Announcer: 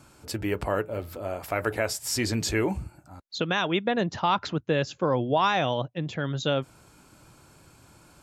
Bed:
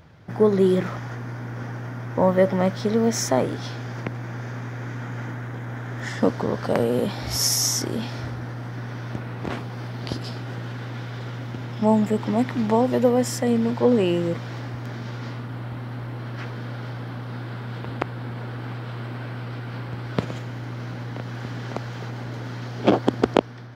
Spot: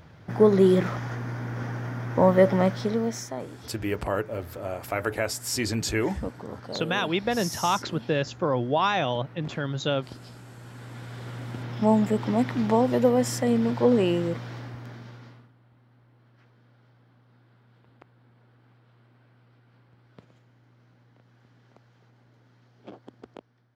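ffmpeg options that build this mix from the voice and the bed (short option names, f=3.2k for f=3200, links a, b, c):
-filter_complex "[0:a]adelay=3400,volume=-0.5dB[a];[1:a]volume=12dB,afade=t=out:st=2.55:d=0.73:silence=0.199526,afade=t=in:st=10.59:d=1.13:silence=0.251189,afade=t=out:st=14.06:d=1.47:silence=0.0562341[b];[a][b]amix=inputs=2:normalize=0"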